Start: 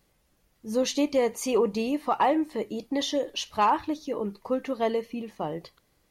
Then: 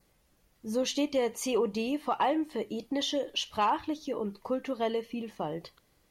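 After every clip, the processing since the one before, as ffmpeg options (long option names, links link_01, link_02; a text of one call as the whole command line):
ffmpeg -i in.wav -filter_complex "[0:a]adynamicequalizer=threshold=0.00282:dfrequency=3100:dqfactor=4:tfrequency=3100:tqfactor=4:attack=5:release=100:ratio=0.375:range=3:mode=boostabove:tftype=bell,asplit=2[link_01][link_02];[link_02]acompressor=threshold=-34dB:ratio=6,volume=1dB[link_03];[link_01][link_03]amix=inputs=2:normalize=0,volume=-6.5dB" out.wav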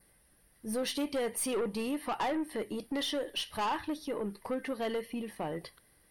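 ffmpeg -i in.wav -af "superequalizer=11b=2:15b=0.355:16b=3.98,aeval=exprs='(tanh(25.1*val(0)+0.15)-tanh(0.15))/25.1':channel_layout=same" out.wav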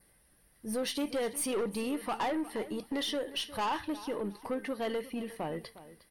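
ffmpeg -i in.wav -af "aecho=1:1:358|716:0.158|0.0396" out.wav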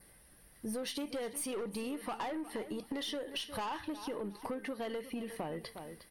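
ffmpeg -i in.wav -af "acompressor=threshold=-42dB:ratio=6,volume=5dB" out.wav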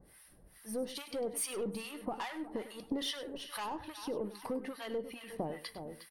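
ffmpeg -i in.wav -filter_complex "[0:a]acrossover=split=900[link_01][link_02];[link_01]aeval=exprs='val(0)*(1-1/2+1/2*cos(2*PI*2.4*n/s))':channel_layout=same[link_03];[link_02]aeval=exprs='val(0)*(1-1/2-1/2*cos(2*PI*2.4*n/s))':channel_layout=same[link_04];[link_03][link_04]amix=inputs=2:normalize=0,aecho=1:1:100:0.188,volume=4.5dB" out.wav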